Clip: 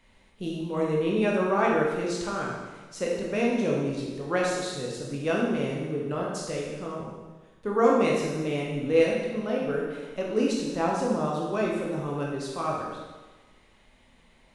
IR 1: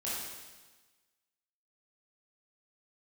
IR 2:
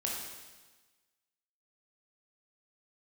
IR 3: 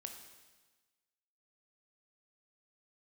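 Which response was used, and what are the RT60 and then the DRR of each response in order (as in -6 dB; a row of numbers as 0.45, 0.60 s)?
2; 1.3, 1.3, 1.3 s; -9.0, -3.0, 4.0 dB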